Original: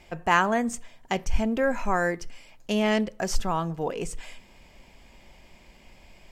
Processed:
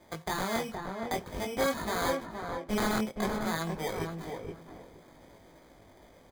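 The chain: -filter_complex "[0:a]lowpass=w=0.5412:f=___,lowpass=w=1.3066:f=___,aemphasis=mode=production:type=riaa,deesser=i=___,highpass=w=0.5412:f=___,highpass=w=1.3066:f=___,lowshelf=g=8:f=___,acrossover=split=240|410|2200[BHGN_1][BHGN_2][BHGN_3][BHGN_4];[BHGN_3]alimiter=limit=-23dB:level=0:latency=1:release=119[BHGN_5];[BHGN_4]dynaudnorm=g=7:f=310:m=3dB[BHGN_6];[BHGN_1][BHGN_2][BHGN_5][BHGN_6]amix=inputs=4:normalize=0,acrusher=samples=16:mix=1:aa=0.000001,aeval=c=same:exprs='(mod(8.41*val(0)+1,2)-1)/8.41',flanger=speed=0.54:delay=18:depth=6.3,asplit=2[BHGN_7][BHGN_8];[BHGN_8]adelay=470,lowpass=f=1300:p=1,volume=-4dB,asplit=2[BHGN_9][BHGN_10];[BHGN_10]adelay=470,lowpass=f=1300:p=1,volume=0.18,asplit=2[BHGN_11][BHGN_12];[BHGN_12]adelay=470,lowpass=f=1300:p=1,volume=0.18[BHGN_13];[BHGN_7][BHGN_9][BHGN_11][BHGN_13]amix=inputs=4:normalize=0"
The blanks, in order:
3900, 3900, 0.85, 49, 49, 170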